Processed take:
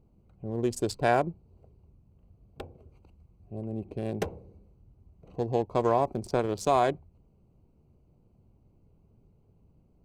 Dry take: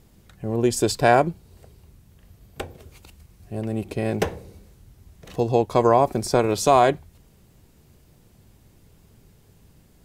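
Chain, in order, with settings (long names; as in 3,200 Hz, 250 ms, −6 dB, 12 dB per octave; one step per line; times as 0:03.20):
adaptive Wiener filter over 25 samples
level −7.5 dB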